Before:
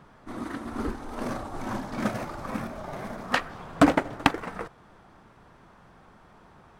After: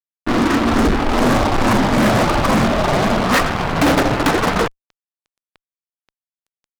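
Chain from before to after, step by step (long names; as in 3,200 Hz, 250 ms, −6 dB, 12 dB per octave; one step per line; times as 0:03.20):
Bessel low-pass filter 2,000 Hz, order 4
low-shelf EQ 82 Hz +2.5 dB
fuzz pedal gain 41 dB, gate −43 dBFS
level +1.5 dB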